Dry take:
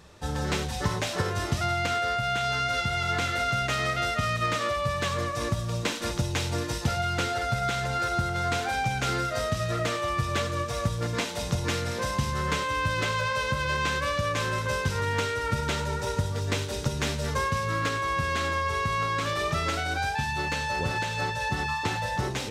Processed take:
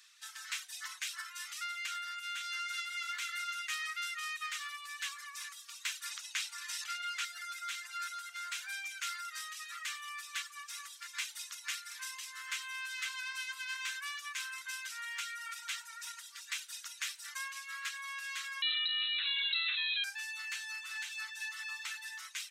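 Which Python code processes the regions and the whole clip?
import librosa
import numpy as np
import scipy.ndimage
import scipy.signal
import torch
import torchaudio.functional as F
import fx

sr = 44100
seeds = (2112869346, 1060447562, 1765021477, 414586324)

y = fx.chain(x, sr, fx.high_shelf(hz=11000.0, db=-9.5),
    fx.env_flatten(amount_pct=50), at=(6.11, 7.25))
y = fx.chain(y, sr, fx.freq_invert(carrier_hz=4000),
    fx.env_flatten(amount_pct=70), at=(18.62, 20.04))
y = scipy.signal.sosfilt(scipy.signal.bessel(8, 2400.0, 'highpass', norm='mag', fs=sr, output='sos'), y)
y = fx.dereverb_blind(y, sr, rt60_s=0.79)
y = fx.dynamic_eq(y, sr, hz=4300.0, q=1.0, threshold_db=-51.0, ratio=4.0, max_db=-6)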